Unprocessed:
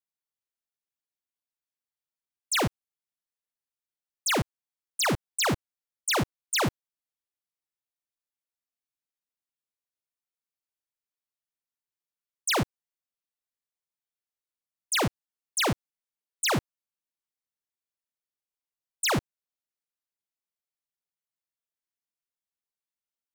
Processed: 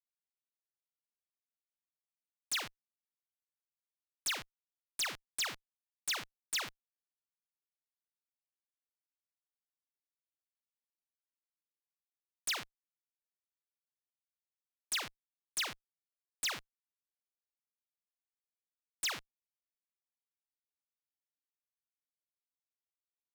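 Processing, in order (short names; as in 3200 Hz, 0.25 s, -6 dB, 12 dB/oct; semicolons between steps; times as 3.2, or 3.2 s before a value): Schmitt trigger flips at -49.5 dBFS; tilt shelf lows -8 dB, about 1400 Hz; overdrive pedal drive 17 dB, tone 5800 Hz, clips at -23 dBFS; gain -3.5 dB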